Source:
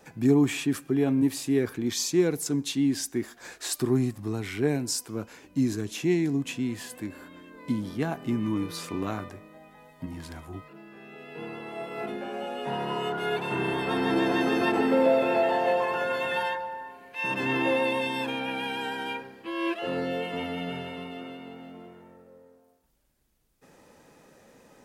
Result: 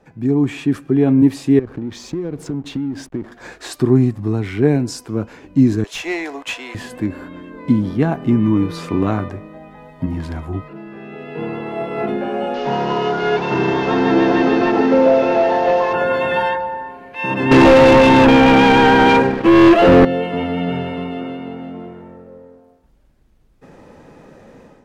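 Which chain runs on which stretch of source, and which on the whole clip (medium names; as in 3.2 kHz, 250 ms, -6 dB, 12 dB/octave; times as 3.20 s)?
1.59–3.32 s: treble shelf 2.4 kHz -7.5 dB + compression 12:1, threshold -33 dBFS + hysteresis with a dead band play -43.5 dBFS
5.84–6.75 s: high-pass 620 Hz 24 dB/octave + waveshaping leveller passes 2 + three bands expanded up and down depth 40%
12.54–15.93 s: one-bit delta coder 32 kbps, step -35 dBFS + bass shelf 170 Hz -7.5 dB
17.51–20.05 s: high-pass 110 Hz + distance through air 260 m + waveshaping leveller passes 5
whole clip: low-pass 3.3 kHz 6 dB/octave; tilt EQ -1.5 dB/octave; level rider gain up to 11.5 dB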